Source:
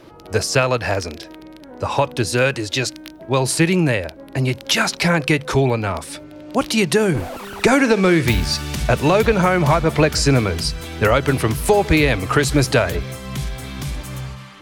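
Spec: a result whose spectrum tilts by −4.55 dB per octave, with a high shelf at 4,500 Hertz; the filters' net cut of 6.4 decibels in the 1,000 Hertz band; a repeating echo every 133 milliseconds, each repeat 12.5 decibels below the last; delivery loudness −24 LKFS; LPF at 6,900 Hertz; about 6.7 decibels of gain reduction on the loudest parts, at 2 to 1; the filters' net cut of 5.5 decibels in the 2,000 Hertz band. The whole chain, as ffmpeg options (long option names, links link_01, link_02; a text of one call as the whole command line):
ffmpeg -i in.wav -af "lowpass=6900,equalizer=frequency=1000:width_type=o:gain=-7.5,equalizer=frequency=2000:width_type=o:gain=-6.5,highshelf=frequency=4500:gain=7.5,acompressor=threshold=-24dB:ratio=2,aecho=1:1:133|266|399:0.237|0.0569|0.0137,volume=1dB" out.wav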